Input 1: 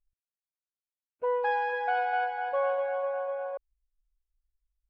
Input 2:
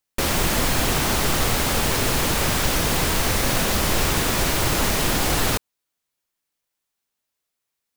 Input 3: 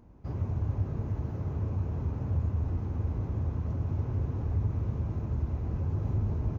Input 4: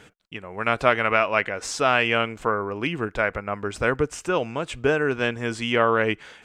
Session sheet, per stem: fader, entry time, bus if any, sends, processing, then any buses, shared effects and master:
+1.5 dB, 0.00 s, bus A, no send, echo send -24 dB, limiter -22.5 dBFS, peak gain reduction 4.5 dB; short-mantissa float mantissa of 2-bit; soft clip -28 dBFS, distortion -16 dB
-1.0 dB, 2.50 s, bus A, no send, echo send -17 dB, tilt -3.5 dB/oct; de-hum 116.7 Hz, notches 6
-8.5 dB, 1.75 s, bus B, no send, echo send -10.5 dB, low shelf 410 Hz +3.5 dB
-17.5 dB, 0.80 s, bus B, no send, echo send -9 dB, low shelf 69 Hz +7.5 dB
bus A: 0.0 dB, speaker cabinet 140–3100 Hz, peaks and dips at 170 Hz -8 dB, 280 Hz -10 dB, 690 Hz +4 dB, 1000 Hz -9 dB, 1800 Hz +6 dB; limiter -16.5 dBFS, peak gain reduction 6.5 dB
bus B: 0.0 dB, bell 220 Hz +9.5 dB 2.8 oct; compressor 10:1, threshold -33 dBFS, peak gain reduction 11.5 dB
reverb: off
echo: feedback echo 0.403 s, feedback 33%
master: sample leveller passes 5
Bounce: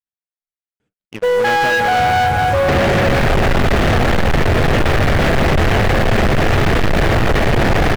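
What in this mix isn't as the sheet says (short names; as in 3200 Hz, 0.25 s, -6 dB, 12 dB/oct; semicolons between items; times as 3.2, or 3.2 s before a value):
stem 1: missing soft clip -28 dBFS, distortion -16 dB; stem 3 -8.5 dB -> 0.0 dB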